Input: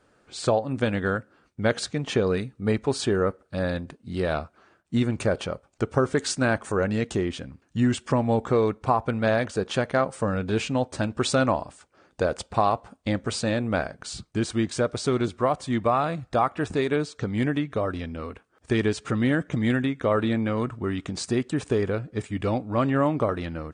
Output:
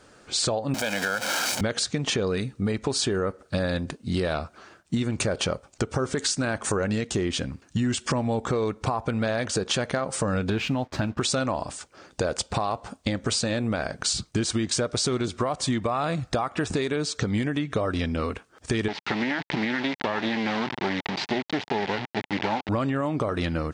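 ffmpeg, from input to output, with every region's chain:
-filter_complex "[0:a]asettb=1/sr,asplit=3[s0][s1][s2];[s0]atrim=end=0.744[s3];[s1]atrim=start=0.74:end=1.61,asetpts=PTS-STARTPTS,afade=t=in:d=0.004:c=qsin,afade=t=out:st=0.866:d=0.004:c=qsin,aeval=exprs='val(0)+0.5*0.0398*sgn(val(0))':c=same,highpass=350,aecho=1:1:1.3:0.62,atrim=end_sample=38367[s4];[s2]atrim=start=1.606[s5];[s3][s4]acrossfade=d=0.004:c1=hsin:c2=qsin[s6];[s6][s5]acrossfade=d=0.004:c1=qsin:c2=hsin,asettb=1/sr,asplit=3[s7][s8][s9];[s7]atrim=end=10.504[s10];[s8]atrim=start=10.5:end=11.21,asetpts=PTS-STARTPTS,afade=t=in:d=0.004:c=qsin,afade=t=out:st=0.706:d=0.004:c=qsin,lowpass=2900,equalizer=f=490:w=3.9:g=-8,aeval=exprs='sgn(val(0))*max(abs(val(0))-0.0015,0)':c=same[s11];[s9]atrim=start=11.206[s12];[s10][s11]acrossfade=d=0.004:c1=hsin:c2=qsin[s13];[s13][s12]acrossfade=d=0.004:c1=qsin:c2=hsin,asettb=1/sr,asplit=3[s14][s15][s16];[s14]atrim=end=18.884[s17];[s15]atrim=start=18.88:end=22.69,asetpts=PTS-STARTPTS,afade=t=in:d=0.004:c=qsin,afade=t=out:st=3.806:d=0.004:c=qsin,acrusher=bits=3:dc=4:mix=0:aa=0.000001,highpass=160,equalizer=f=500:t=q:w=4:g=-6,equalizer=f=860:t=q:w=4:g=7,equalizer=f=1200:t=q:w=4:g=-4,equalizer=f=2000:t=q:w=4:g=5,lowpass=f=3900:w=0.5412,lowpass=f=3900:w=1.3066[s18];[s16]atrim=start=22.686[s19];[s17][s18]acrossfade=d=0.004:c1=hsin:c2=qsin[s20];[s20][s19]acrossfade=d=0.004:c1=qsin:c2=hsin,equalizer=f=5900:t=o:w=1.7:g=7.5,alimiter=limit=0.112:level=0:latency=1:release=152,acompressor=threshold=0.0316:ratio=6,volume=2.51"

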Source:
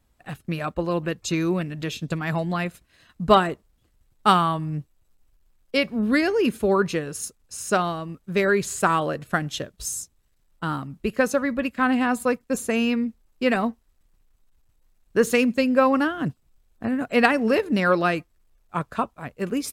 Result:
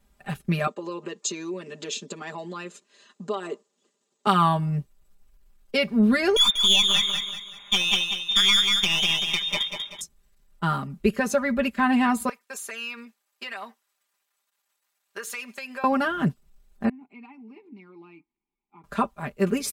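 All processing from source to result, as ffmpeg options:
-filter_complex "[0:a]asettb=1/sr,asplit=3[s0][s1][s2];[s0]atrim=end=0.674[s3];[s1]atrim=start=0.67:end=4.27,asetpts=PTS-STARTPTS,afade=t=in:d=0.004:c=qsin,afade=t=out:st=3.596:d=0.004:c=qsin,acompressor=threshold=0.0398:ratio=12:attack=3.2:release=140:knee=1:detection=peak,highpass=f=260:w=0.5412,highpass=f=260:w=1.3066,equalizer=f=460:t=q:w=4:g=5,equalizer=f=710:t=q:w=4:g=-5,equalizer=f=1500:t=q:w=4:g=-6,equalizer=f=2200:t=q:w=4:g=-6,equalizer=f=7000:t=q:w=4:g=9,lowpass=f=7900:w=0.5412,lowpass=f=7900:w=1.3066[s4];[s2]atrim=start=4.266[s5];[s3][s4]acrossfade=d=0.004:c1=hsin:c2=qsin[s6];[s6][s5]acrossfade=d=0.004:c1=qsin:c2=hsin,asettb=1/sr,asplit=3[s7][s8][s9];[s7]atrim=end=6.364[s10];[s8]atrim=start=6.36:end=10.01,asetpts=PTS-STARTPTS,afade=t=in:d=0.004:c=qsin,afade=t=out:st=3.646:d=0.004:c=qsin,lowpass=f=3200:t=q:w=0.5098,lowpass=f=3200:t=q:w=0.6013,lowpass=f=3200:t=q:w=0.9,lowpass=f=3200:t=q:w=2.563,afreqshift=-3800,aeval=exprs='clip(val(0),-1,0.0794)':c=same,aecho=1:1:191|382|573|764|955:0.501|0.19|0.0724|0.0275|0.0105,atrim=end_sample=160965[s11];[s9]atrim=start=10.006[s12];[s10][s11]acrossfade=d=0.004:c1=hsin:c2=qsin[s13];[s13][s12]acrossfade=d=0.004:c1=qsin:c2=hsin,asettb=1/sr,asplit=3[s14][s15][s16];[s14]atrim=end=12.294[s17];[s15]atrim=start=12.29:end=15.84,asetpts=PTS-STARTPTS,afade=t=in:d=0.004:c=qsin,afade=t=out:st=3.546:d=0.004:c=qsin,highpass=930,acompressor=threshold=0.0178:ratio=4:attack=3.2:release=140:knee=1:detection=peak[s18];[s16]atrim=start=15.836[s19];[s17][s18]acrossfade=d=0.004:c1=hsin:c2=qsin[s20];[s20][s19]acrossfade=d=0.004:c1=qsin:c2=hsin,asettb=1/sr,asplit=3[s21][s22][s23];[s21]atrim=end=16.894[s24];[s22]atrim=start=16.89:end=18.84,asetpts=PTS-STARTPTS,afade=t=in:d=0.004:c=qsin,afade=t=out:st=1.946:d=0.004:c=qsin,acompressor=threshold=0.00562:ratio=2:attack=3.2:release=140:knee=1:detection=peak,asplit=3[s25][s26][s27];[s25]bandpass=f=300:t=q:w=8,volume=1[s28];[s26]bandpass=f=870:t=q:w=8,volume=0.501[s29];[s27]bandpass=f=2240:t=q:w=8,volume=0.355[s30];[s28][s29][s30]amix=inputs=3:normalize=0[s31];[s23]atrim=start=18.836[s32];[s24][s31]acrossfade=d=0.004:c1=hsin:c2=qsin[s33];[s33][s32]acrossfade=d=0.004:c1=qsin:c2=hsin,alimiter=limit=0.224:level=0:latency=1:release=155,aecho=1:1:5:0.93"

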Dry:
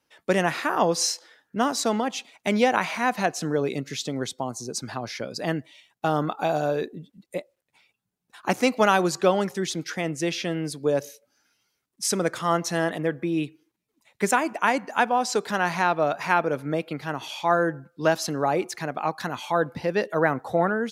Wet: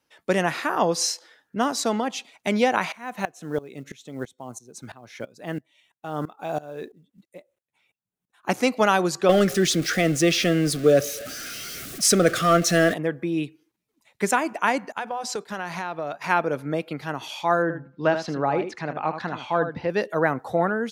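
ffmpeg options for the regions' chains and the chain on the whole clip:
-filter_complex "[0:a]asettb=1/sr,asplit=3[s0][s1][s2];[s0]atrim=end=2.924[s3];[s1]atrim=start=2.92:end=8.49,asetpts=PTS-STARTPTS,afade=t=in:d=0.004:c=qsin,afade=t=out:st=5.566:d=0.004:c=qsin,equalizer=f=4800:w=4.7:g=-12.5,acrusher=bits=8:mode=log:mix=0:aa=0.000001,aeval=exprs='val(0)*pow(10,-20*if(lt(mod(-3*n/s,1),2*abs(-3)/1000),1-mod(-3*n/s,1)/(2*abs(-3)/1000),(mod(-3*n/s,1)-2*abs(-3)/1000)/(1-2*abs(-3)/1000))/20)':c=same[s4];[s2]atrim=start=8.486[s5];[s3][s4]acrossfade=d=0.004:c1=hsin:c2=qsin[s6];[s6][s5]acrossfade=d=0.004:c1=qsin:c2=hsin,asettb=1/sr,asplit=3[s7][s8][s9];[s7]atrim=end=9.294[s10];[s8]atrim=start=9.29:end=12.94,asetpts=PTS-STARTPTS,afade=t=in:d=0.004:c=qsin,afade=t=out:st=3.646:d=0.004:c=qsin,aeval=exprs='val(0)+0.5*0.0168*sgn(val(0))':c=same,acontrast=53,asuperstop=centerf=930:order=8:qfactor=2.6[s11];[s9]atrim=start=12.936[s12];[s10][s11]acrossfade=d=0.004:c1=hsin:c2=qsin[s13];[s13][s12]acrossfade=d=0.004:c1=qsin:c2=hsin,asettb=1/sr,asplit=3[s14][s15][s16];[s14]atrim=end=14.924[s17];[s15]atrim=start=14.92:end=16.24,asetpts=PTS-STARTPTS,afade=t=in:d=0.004:c=qsin,afade=t=out:st=1.316:d=0.004:c=qsin,agate=range=0.0224:threshold=0.0355:ratio=3:release=100:detection=peak,bandreject=f=250:w=8.2,acompressor=threshold=0.0501:ratio=4:attack=3.2:release=140:knee=1:detection=peak[s18];[s16]atrim=start=16.236[s19];[s17][s18]acrossfade=d=0.004:c1=hsin:c2=qsin[s20];[s20][s19]acrossfade=d=0.004:c1=qsin:c2=hsin,asettb=1/sr,asplit=3[s21][s22][s23];[s21]atrim=end=17.624[s24];[s22]atrim=start=17.62:end=19.9,asetpts=PTS-STARTPTS,afade=t=in:d=0.004:c=qsin,afade=t=out:st=2.276:d=0.004:c=qsin,lowpass=3300,aecho=1:1:78:0.355,atrim=end_sample=100548[s25];[s23]atrim=start=19.896[s26];[s24][s25]acrossfade=d=0.004:c1=hsin:c2=qsin[s27];[s27][s26]acrossfade=d=0.004:c1=qsin:c2=hsin"

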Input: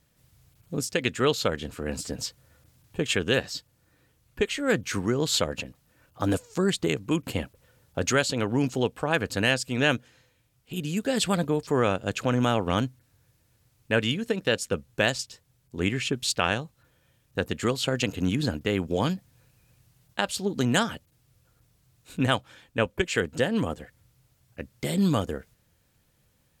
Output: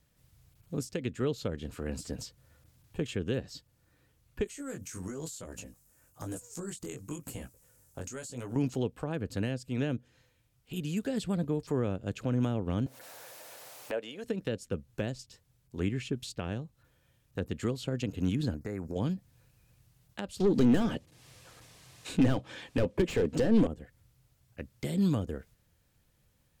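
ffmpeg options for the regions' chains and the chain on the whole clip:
-filter_complex "[0:a]asettb=1/sr,asplit=3[s0][s1][s2];[s0]atrim=end=4.444[s3];[s1]atrim=start=4.44:end=8.56,asetpts=PTS-STARTPTS,afade=t=in:d=0.004:c=qsin,afade=t=out:st=4.116:d=0.004:c=qsin,highshelf=f=5300:t=q:w=1.5:g=12,acompressor=threshold=0.0398:ratio=4:attack=3.2:release=140:knee=1:detection=peak,flanger=delay=16.5:depth=5.6:speed=1[s4];[s2]atrim=start=8.556[s5];[s3][s4]acrossfade=d=0.004:c1=hsin:c2=qsin[s6];[s6][s5]acrossfade=d=0.004:c1=qsin:c2=hsin,asettb=1/sr,asplit=3[s7][s8][s9];[s7]atrim=end=12.864[s10];[s8]atrim=start=12.86:end=14.24,asetpts=PTS-STARTPTS,afade=t=in:d=0.004:c=qsin,afade=t=out:st=1.376:d=0.004:c=qsin,highpass=f=630:t=q:w=2.4,acompressor=mode=upward:threshold=0.0708:ratio=2.5:attack=3.2:release=140:knee=2.83:detection=peak[s11];[s9]atrim=start=14.236[s12];[s10][s11]acrossfade=d=0.004:c1=hsin:c2=qsin[s13];[s13][s12]acrossfade=d=0.004:c1=qsin:c2=hsin,asettb=1/sr,asplit=3[s14][s15][s16];[s14]atrim=end=18.544[s17];[s15]atrim=start=18.54:end=18.96,asetpts=PTS-STARTPTS,afade=t=in:d=0.004:c=qsin,afade=t=out:st=0.416:d=0.004:c=qsin,asuperstop=centerf=3100:order=4:qfactor=1.2,acompressor=threshold=0.0316:ratio=2.5:attack=3.2:release=140:knee=1:detection=peak[s18];[s16]atrim=start=18.956[s19];[s17][s18]acrossfade=d=0.004:c1=hsin:c2=qsin[s20];[s20][s19]acrossfade=d=0.004:c1=qsin:c2=hsin,asettb=1/sr,asplit=3[s21][s22][s23];[s21]atrim=end=20.404[s24];[s22]atrim=start=20.4:end=23.67,asetpts=PTS-STARTPTS,afade=t=in:d=0.004:c=qsin,afade=t=out:st=3.266:d=0.004:c=qsin,lowpass=11000,bandreject=f=1400:w=8.7,asplit=2[s25][s26];[s26]highpass=f=720:p=1,volume=28.2,asoftclip=type=tanh:threshold=0.376[s27];[s25][s27]amix=inputs=2:normalize=0,lowpass=f=5900:p=1,volume=0.501[s28];[s23]atrim=start=23.666[s29];[s24][s28]acrossfade=d=0.004:c1=hsin:c2=qsin[s30];[s30][s29]acrossfade=d=0.004:c1=qsin:c2=hsin,lowshelf=f=67:g=7,acrossover=split=470[s31][s32];[s32]acompressor=threshold=0.0141:ratio=6[s33];[s31][s33]amix=inputs=2:normalize=0,volume=0.596"

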